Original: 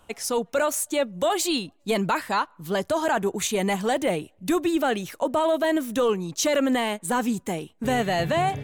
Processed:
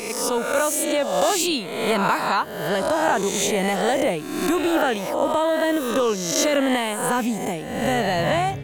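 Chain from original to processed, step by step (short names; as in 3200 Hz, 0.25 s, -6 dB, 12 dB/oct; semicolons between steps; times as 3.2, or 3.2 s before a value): spectral swells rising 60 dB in 0.99 s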